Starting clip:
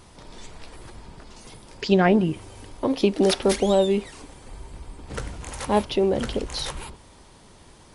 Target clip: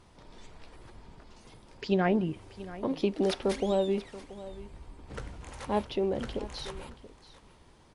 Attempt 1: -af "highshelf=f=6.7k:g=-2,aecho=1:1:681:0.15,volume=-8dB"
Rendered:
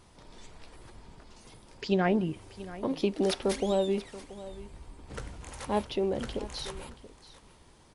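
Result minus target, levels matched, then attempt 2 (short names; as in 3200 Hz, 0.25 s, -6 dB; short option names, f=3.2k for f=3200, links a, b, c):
8000 Hz band +5.0 dB
-af "highshelf=f=6.7k:g=-11,aecho=1:1:681:0.15,volume=-8dB"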